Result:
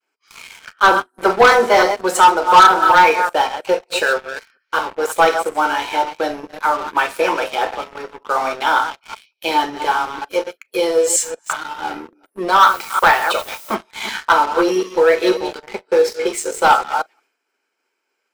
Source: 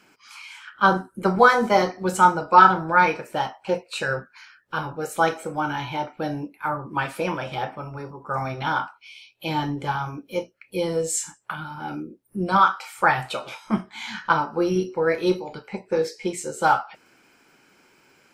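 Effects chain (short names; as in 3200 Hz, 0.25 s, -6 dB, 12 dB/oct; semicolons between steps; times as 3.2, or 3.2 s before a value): reverse delay 0.183 s, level -10.5 dB; HPF 340 Hz 24 dB/oct; expander -51 dBFS; sample leveller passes 3; 12.59–13.74 added noise blue -37 dBFS; on a send: reverb, pre-delay 4 ms, DRR 14.5 dB; on the sum: gain -2 dB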